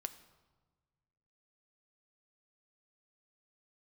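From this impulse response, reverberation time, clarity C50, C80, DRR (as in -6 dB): 1.4 s, 14.0 dB, 15.5 dB, 9.5 dB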